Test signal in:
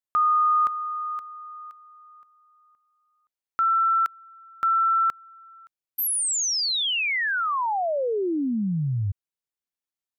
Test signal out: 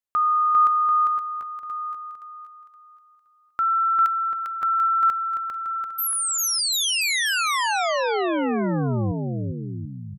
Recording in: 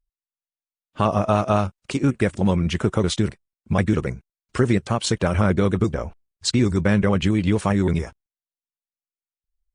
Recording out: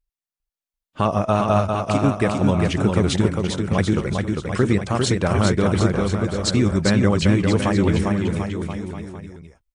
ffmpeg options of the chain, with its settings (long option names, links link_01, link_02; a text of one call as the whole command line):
ffmpeg -i in.wav -af "aecho=1:1:400|740|1029|1275|1483:0.631|0.398|0.251|0.158|0.1" out.wav